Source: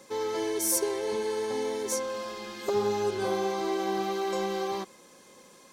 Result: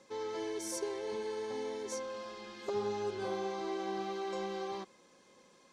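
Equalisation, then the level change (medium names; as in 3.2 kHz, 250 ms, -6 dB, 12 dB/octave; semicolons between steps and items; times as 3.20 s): low-pass 6.3 kHz 12 dB/octave; -8.0 dB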